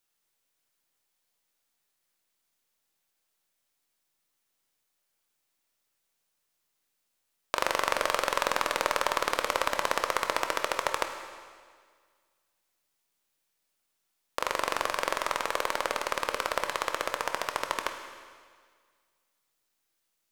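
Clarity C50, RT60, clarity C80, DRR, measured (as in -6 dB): 7.0 dB, 1.8 s, 8.5 dB, 5.5 dB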